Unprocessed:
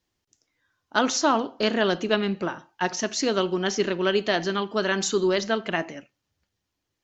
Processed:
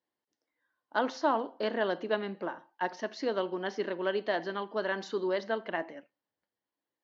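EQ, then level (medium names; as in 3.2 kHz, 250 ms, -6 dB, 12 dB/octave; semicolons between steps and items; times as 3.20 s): cabinet simulation 380–4400 Hz, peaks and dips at 390 Hz -5 dB, 710 Hz -3 dB, 1.3 kHz -7 dB, 2.5 kHz -9 dB, 3.5 kHz -4 dB; treble shelf 2.6 kHz -11.5 dB; -1.5 dB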